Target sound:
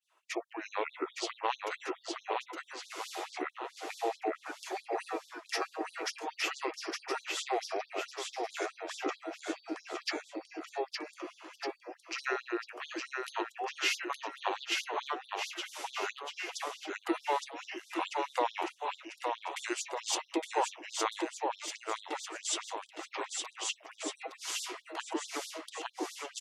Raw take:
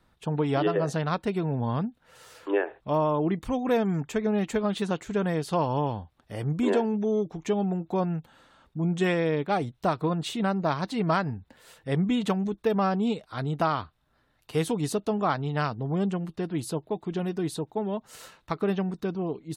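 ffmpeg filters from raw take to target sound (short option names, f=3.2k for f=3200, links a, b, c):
-af "highpass=55,agate=range=-33dB:threshold=-59dB:ratio=3:detection=peak,equalizer=f=710:t=o:w=0.7:g=-8.5,bandreject=f=50:t=h:w=6,bandreject=f=100:t=h:w=6,bandreject=f=150:t=h:w=6,bandreject=f=200:t=h:w=6,acompressor=threshold=-32dB:ratio=6,aecho=1:1:640|1152|1562|1889|2151:0.631|0.398|0.251|0.158|0.1,asetrate=32667,aresample=44100,afftfilt=real='re*gte(b*sr/1024,300*pow(3500/300,0.5+0.5*sin(2*PI*4.6*pts/sr)))':imag='im*gte(b*sr/1024,300*pow(3500/300,0.5+0.5*sin(2*PI*4.6*pts/sr)))':win_size=1024:overlap=0.75,volume=8dB"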